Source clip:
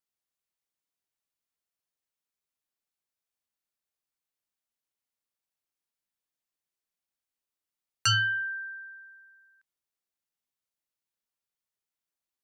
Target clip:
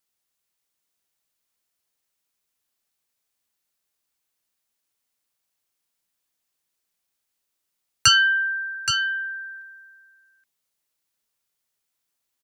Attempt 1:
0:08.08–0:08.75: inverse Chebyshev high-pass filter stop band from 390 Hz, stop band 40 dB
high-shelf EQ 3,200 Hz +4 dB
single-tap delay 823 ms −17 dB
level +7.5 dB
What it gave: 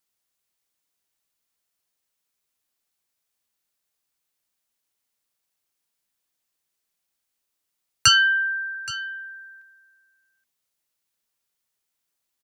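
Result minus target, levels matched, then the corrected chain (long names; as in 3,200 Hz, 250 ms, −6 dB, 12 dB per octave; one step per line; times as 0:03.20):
echo-to-direct −9.5 dB
0:08.08–0:08.75: inverse Chebyshev high-pass filter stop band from 390 Hz, stop band 40 dB
high-shelf EQ 3,200 Hz +4 dB
single-tap delay 823 ms −7.5 dB
level +7.5 dB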